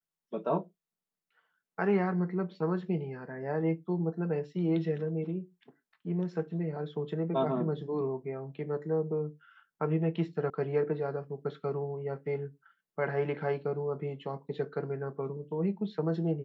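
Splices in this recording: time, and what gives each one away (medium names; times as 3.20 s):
10.50 s: sound stops dead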